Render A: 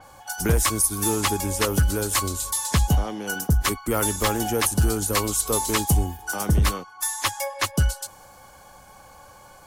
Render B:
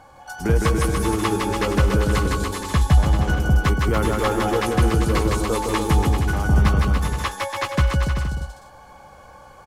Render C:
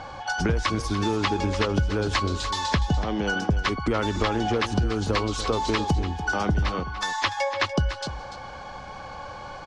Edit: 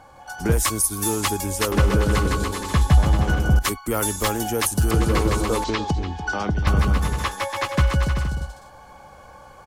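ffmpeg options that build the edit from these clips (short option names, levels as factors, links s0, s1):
-filter_complex "[0:a]asplit=2[s0][s1];[1:a]asplit=4[s2][s3][s4][s5];[s2]atrim=end=0.522[s6];[s0]atrim=start=0.518:end=1.722[s7];[s3]atrim=start=1.718:end=3.592[s8];[s1]atrim=start=3.588:end=4.912[s9];[s4]atrim=start=4.908:end=5.642[s10];[2:a]atrim=start=5.638:end=6.672[s11];[s5]atrim=start=6.668[s12];[s6][s7]acrossfade=d=0.004:c1=hsin:c2=hsin[s13];[s13][s8]acrossfade=d=0.004:c1=hsin:c2=hsin[s14];[s14][s9]acrossfade=d=0.004:c1=hsin:c2=hsin[s15];[s15][s10]acrossfade=d=0.004:c1=hsin:c2=hsin[s16];[s16][s11]acrossfade=d=0.004:c1=hsin:c2=hsin[s17];[s17][s12]acrossfade=d=0.004:c1=hsin:c2=hsin"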